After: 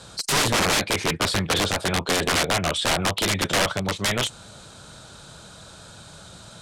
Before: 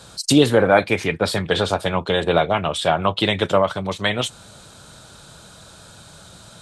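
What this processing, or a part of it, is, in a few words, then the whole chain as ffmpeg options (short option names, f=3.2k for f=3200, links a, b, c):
overflowing digital effects unit: -af "aeval=exprs='(mod(5.31*val(0)+1,2)-1)/5.31':c=same,lowpass=10k"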